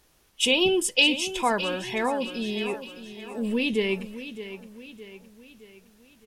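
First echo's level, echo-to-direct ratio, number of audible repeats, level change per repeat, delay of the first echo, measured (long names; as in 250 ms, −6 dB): −12.5 dB, −11.5 dB, 4, −6.5 dB, 615 ms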